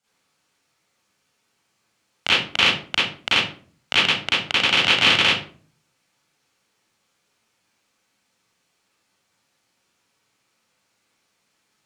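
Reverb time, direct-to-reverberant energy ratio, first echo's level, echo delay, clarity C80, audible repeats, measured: 0.45 s, -10.5 dB, no echo, no echo, 6.5 dB, no echo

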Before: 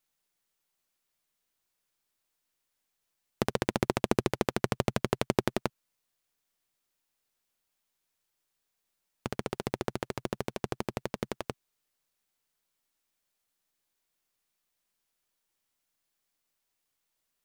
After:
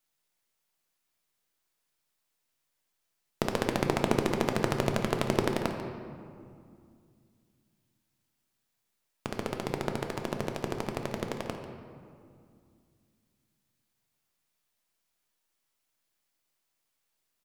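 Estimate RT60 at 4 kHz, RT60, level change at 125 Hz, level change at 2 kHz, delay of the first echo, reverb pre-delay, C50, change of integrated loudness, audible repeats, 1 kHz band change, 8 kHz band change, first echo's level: 1.3 s, 2.3 s, +1.5 dB, +1.5 dB, 143 ms, 3 ms, 5.5 dB, +1.5 dB, 1, +1.5 dB, +0.5 dB, -14.0 dB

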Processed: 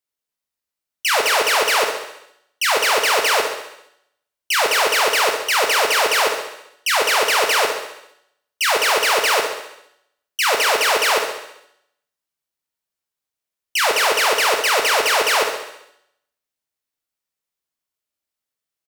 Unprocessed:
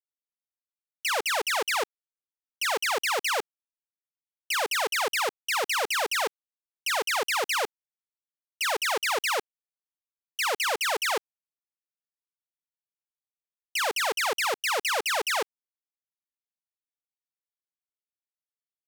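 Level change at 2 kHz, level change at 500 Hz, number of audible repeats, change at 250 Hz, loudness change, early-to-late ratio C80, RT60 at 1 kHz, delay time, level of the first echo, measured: +10.0 dB, +10.5 dB, 6, +9.5 dB, +10.0 dB, 7.5 dB, 0.80 s, 67 ms, -10.0 dB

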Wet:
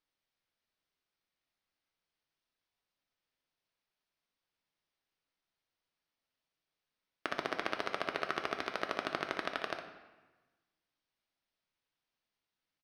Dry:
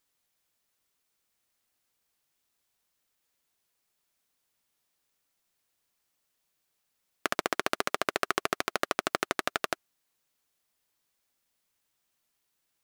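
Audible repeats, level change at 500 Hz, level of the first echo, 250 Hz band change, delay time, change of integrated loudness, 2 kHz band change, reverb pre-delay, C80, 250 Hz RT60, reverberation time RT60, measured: 1, -5.5 dB, -9.5 dB, -5.5 dB, 60 ms, -6.5 dB, -6.0 dB, 3 ms, 10.0 dB, 1.5 s, 1.2 s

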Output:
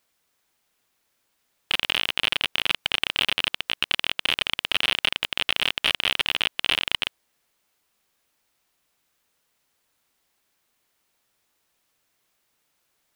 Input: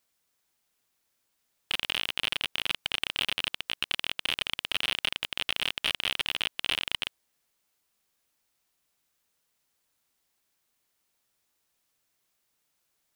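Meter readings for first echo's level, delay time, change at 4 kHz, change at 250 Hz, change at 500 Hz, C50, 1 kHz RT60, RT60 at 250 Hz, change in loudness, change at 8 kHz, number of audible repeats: no echo, no echo, +6.0 dB, +6.0 dB, +7.0 dB, no reverb, no reverb, no reverb, +6.0 dB, +3.0 dB, no echo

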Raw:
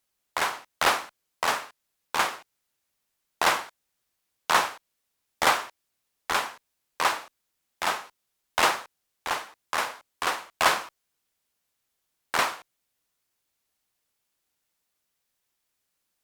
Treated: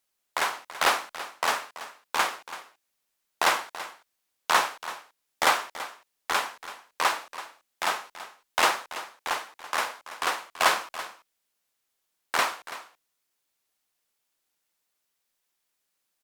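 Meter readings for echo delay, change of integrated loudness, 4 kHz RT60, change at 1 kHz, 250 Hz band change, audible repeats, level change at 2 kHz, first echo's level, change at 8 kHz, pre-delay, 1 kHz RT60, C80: 332 ms, -0.5 dB, no reverb, 0.0 dB, -2.5 dB, 1, 0.0 dB, -14.5 dB, 0.0 dB, no reverb, no reverb, no reverb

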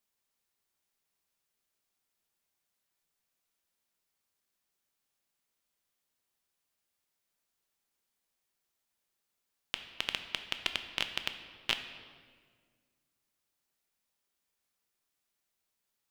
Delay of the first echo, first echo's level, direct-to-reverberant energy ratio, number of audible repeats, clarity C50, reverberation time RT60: no echo, no echo, 7.0 dB, no echo, 9.0 dB, 1.7 s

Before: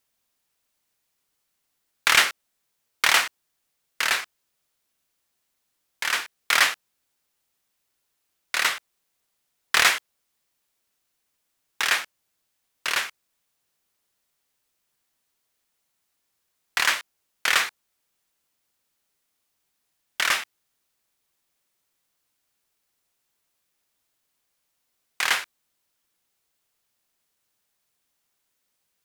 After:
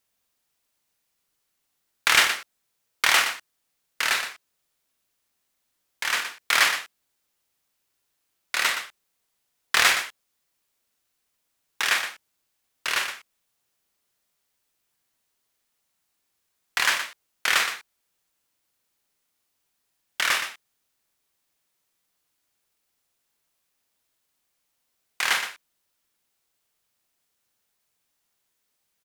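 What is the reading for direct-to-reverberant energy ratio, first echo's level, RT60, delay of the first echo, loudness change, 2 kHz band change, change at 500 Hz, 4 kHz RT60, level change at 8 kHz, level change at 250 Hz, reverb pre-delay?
no reverb, -8.5 dB, no reverb, 42 ms, -0.5 dB, 0.0 dB, 0.0 dB, no reverb, 0.0 dB, 0.0 dB, no reverb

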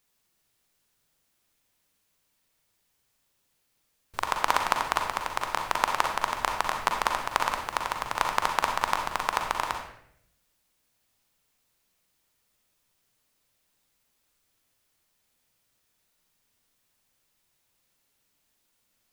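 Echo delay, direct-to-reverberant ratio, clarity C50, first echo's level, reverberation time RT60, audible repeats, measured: no echo, 2.5 dB, 4.0 dB, no echo, 0.70 s, no echo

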